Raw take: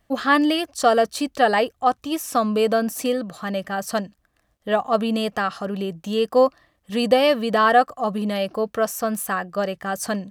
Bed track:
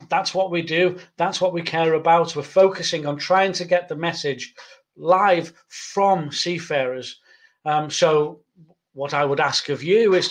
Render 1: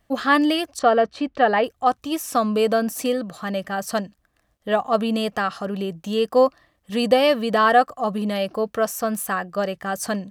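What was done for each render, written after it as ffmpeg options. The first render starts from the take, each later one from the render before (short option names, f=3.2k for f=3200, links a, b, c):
-filter_complex "[0:a]asettb=1/sr,asplit=3[a][b][c];[a]atrim=end=0.794[d];[b]atrim=start=0.79:end=1.64,asetpts=PTS-STARTPTS,afade=t=in:d=0.004:c=qsin,afade=t=out:st=0.846:d=0.004:c=qsin,lowpass=2.7k[e];[c]atrim=start=1.636[f];[d][e]acrossfade=d=0.004:c1=hsin:c2=qsin[g];[g][f]acrossfade=d=0.004:c1=qsin:c2=hsin"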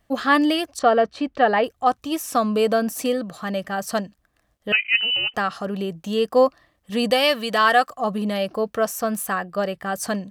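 -filter_complex "[0:a]asettb=1/sr,asplit=3[a][b][c];[a]atrim=end=4.724[d];[b]atrim=start=4.72:end=5.34,asetpts=PTS-STARTPTS,afade=t=in:d=0.004:c=qsin,afade=t=out:st=0.616:d=0.004:c=qsin,lowpass=f=2.7k:t=q:w=0.5098,lowpass=f=2.7k:t=q:w=0.6013,lowpass=f=2.7k:t=q:w=0.9,lowpass=f=2.7k:t=q:w=2.563,afreqshift=-3200[e];[c]atrim=start=5.336[f];[d][e]acrossfade=d=0.004:c1=hsin:c2=qsin[g];[g][f]acrossfade=d=0.004:c1=qsin:c2=hsin,asettb=1/sr,asplit=3[h][i][j];[h]atrim=end=7.104[k];[i]atrim=start=7.1:end=7.95,asetpts=PTS-STARTPTS,afade=t=in:d=0.004:c=qsin,afade=t=out:st=0.846:d=0.004:c=qsin,tiltshelf=f=1.1k:g=-6[l];[j]atrim=start=7.946[m];[k][l]acrossfade=d=0.004:c1=hsin:c2=qsin[n];[n][m]acrossfade=d=0.004:c1=qsin:c2=hsin,asettb=1/sr,asplit=3[o][p][q];[o]atrim=end=9.384[r];[p]atrim=start=9.38:end=9.98,asetpts=PTS-STARTPTS,afade=t=in:d=0.004:c=qsin,afade=t=out:st=0.596:d=0.004:c=qsin,equalizer=f=6.3k:t=o:w=0.25:g=-8.5[s];[q]atrim=start=9.976[t];[r][s]acrossfade=d=0.004:c1=hsin:c2=qsin[u];[u][t]acrossfade=d=0.004:c1=qsin:c2=hsin"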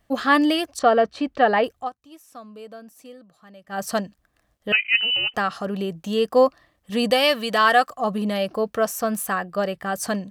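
-filter_complex "[0:a]asplit=3[a][b][c];[a]atrim=end=1.9,asetpts=PTS-STARTPTS,afade=t=out:st=1.77:d=0.13:silence=0.0944061[d];[b]atrim=start=1.9:end=3.67,asetpts=PTS-STARTPTS,volume=-20.5dB[e];[c]atrim=start=3.67,asetpts=PTS-STARTPTS,afade=t=in:d=0.13:silence=0.0944061[f];[d][e][f]concat=n=3:v=0:a=1"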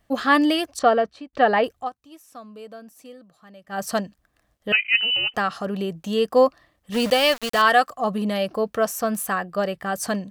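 -filter_complex "[0:a]asettb=1/sr,asplit=3[a][b][c];[a]atrim=end=6.944[d];[b]atrim=start=6.94:end=7.62,asetpts=PTS-STARTPTS,afade=t=in:d=0.004:c=qsin,afade=t=out:st=0.676:d=0.004:c=qsin,aeval=exprs='val(0)*gte(abs(val(0)),0.0473)':c=same[e];[c]atrim=start=7.616[f];[d][e]acrossfade=d=0.004:c1=hsin:c2=qsin[g];[g][f]acrossfade=d=0.004:c1=qsin:c2=hsin,asplit=2[h][i];[h]atrim=end=1.33,asetpts=PTS-STARTPTS,afade=t=out:st=0.88:d=0.45[j];[i]atrim=start=1.33,asetpts=PTS-STARTPTS,afade=t=in:d=0.004:c=hsin[k];[j][k]concat=n=2:v=0:a=1"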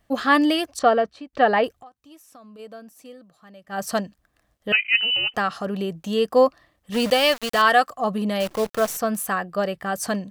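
-filter_complex "[0:a]asplit=3[a][b][c];[a]afade=t=out:st=1.77:d=0.02[d];[b]acompressor=threshold=-42dB:ratio=6:attack=3.2:release=140:knee=1:detection=peak,afade=t=in:st=1.77:d=0.02,afade=t=out:st=2.58:d=0.02[e];[c]afade=t=in:st=2.58:d=0.02[f];[d][e][f]amix=inputs=3:normalize=0,asettb=1/sr,asplit=3[g][h][i];[g]atrim=end=8.404[j];[h]atrim=start=8.4:end=8.97,asetpts=PTS-STARTPTS,afade=t=in:d=0.004:c=qsin,afade=t=out:st=0.566:d=0.004:c=qsin,acrusher=bits=6:dc=4:mix=0:aa=0.000001[k];[i]atrim=start=8.966[l];[j][k]acrossfade=d=0.004:c1=hsin:c2=qsin[m];[m][l]acrossfade=d=0.004:c1=qsin:c2=hsin"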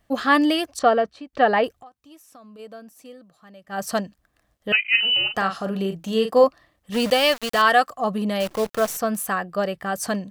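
-filter_complex "[0:a]asettb=1/sr,asplit=3[a][b][c];[a]atrim=end=4.824[d];[b]atrim=start=4.82:end=6.44,asetpts=PTS-STARTPTS,afade=t=in:d=0.004:c=qsin,afade=t=out:st=1.616:d=0.004:c=qsin,asplit=2[e][f];[f]adelay=41,volume=-8dB[g];[e][g]amix=inputs=2:normalize=0,atrim=end_sample=71442[h];[c]atrim=start=6.436[i];[d][h]acrossfade=d=0.004:c1=hsin:c2=qsin[j];[j][i]acrossfade=d=0.004:c1=qsin:c2=hsin"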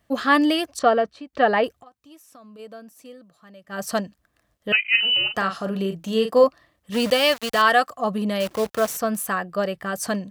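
-af "highpass=47,bandreject=f=780:w=14"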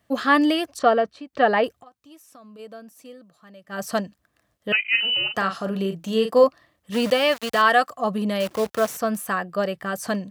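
-filter_complex "[0:a]highpass=68,acrossover=split=2900[a][b];[b]acompressor=threshold=-30dB:ratio=4:attack=1:release=60[c];[a][c]amix=inputs=2:normalize=0"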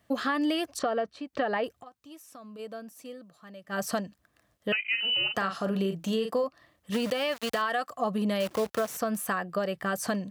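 -af "alimiter=limit=-15dB:level=0:latency=1:release=256,acompressor=threshold=-26dB:ratio=2.5"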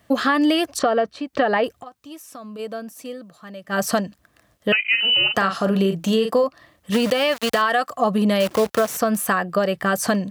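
-af "volume=9.5dB"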